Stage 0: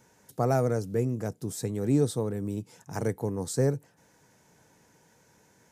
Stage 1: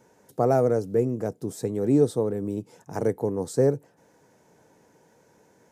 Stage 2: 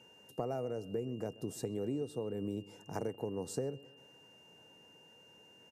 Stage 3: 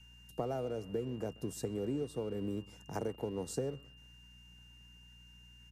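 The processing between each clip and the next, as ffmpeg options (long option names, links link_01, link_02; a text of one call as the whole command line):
ffmpeg -i in.wav -af "equalizer=frequency=460:width_type=o:width=2.5:gain=10,volume=-3.5dB" out.wav
ffmpeg -i in.wav -filter_complex "[0:a]acompressor=threshold=-28dB:ratio=10,aeval=exprs='val(0)+0.002*sin(2*PI*2800*n/s)':channel_layout=same,asplit=2[link_01][link_02];[link_02]adelay=129,lowpass=frequency=2800:poles=1,volume=-20dB,asplit=2[link_03][link_04];[link_04]adelay=129,lowpass=frequency=2800:poles=1,volume=0.49,asplit=2[link_05][link_06];[link_06]adelay=129,lowpass=frequency=2800:poles=1,volume=0.49,asplit=2[link_07][link_08];[link_08]adelay=129,lowpass=frequency=2800:poles=1,volume=0.49[link_09];[link_01][link_03][link_05][link_07][link_09]amix=inputs=5:normalize=0,volume=-5.5dB" out.wav
ffmpeg -i in.wav -filter_complex "[0:a]aeval=exprs='val(0)+0.00112*(sin(2*PI*60*n/s)+sin(2*PI*2*60*n/s)/2+sin(2*PI*3*60*n/s)/3+sin(2*PI*4*60*n/s)/4+sin(2*PI*5*60*n/s)/5)':channel_layout=same,acrossover=split=230|1200[link_01][link_02][link_03];[link_02]aeval=exprs='sgn(val(0))*max(abs(val(0))-0.00119,0)':channel_layout=same[link_04];[link_01][link_04][link_03]amix=inputs=3:normalize=0,volume=1dB" out.wav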